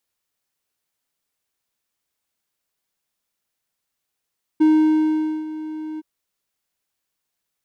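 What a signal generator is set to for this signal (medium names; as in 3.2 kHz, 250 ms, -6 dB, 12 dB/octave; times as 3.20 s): ADSR triangle 311 Hz, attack 15 ms, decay 832 ms, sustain -16.5 dB, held 1.39 s, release 28 ms -8.5 dBFS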